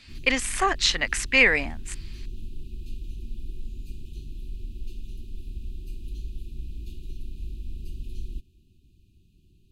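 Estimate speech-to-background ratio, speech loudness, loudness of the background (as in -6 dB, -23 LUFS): 19.5 dB, -21.5 LUFS, -41.0 LUFS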